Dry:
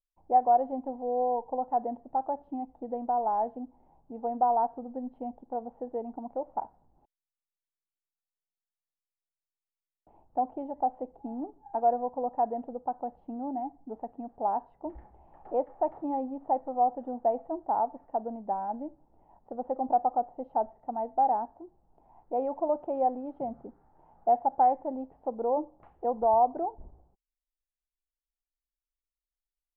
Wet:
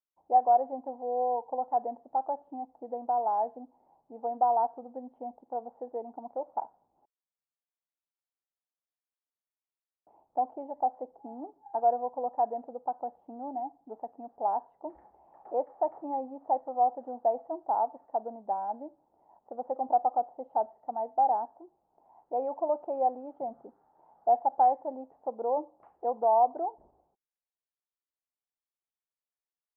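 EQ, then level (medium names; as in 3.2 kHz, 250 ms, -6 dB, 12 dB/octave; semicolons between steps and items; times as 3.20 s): band-pass filter 760 Hz, Q 0.83; 0.0 dB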